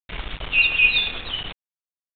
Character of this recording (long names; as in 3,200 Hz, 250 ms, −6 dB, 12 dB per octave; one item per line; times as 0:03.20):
tremolo triangle 9.6 Hz, depth 35%
a quantiser's noise floor 6 bits, dither none
G.726